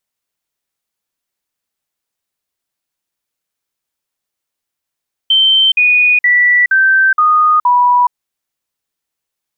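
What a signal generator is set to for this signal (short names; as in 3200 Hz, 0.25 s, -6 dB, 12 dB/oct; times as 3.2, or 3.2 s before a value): stepped sine 3110 Hz down, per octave 3, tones 6, 0.42 s, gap 0.05 s -6.5 dBFS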